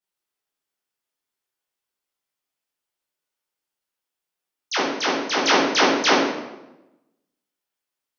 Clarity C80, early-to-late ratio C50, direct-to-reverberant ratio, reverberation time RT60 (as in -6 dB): 4.0 dB, 0.5 dB, -8.0 dB, 1.0 s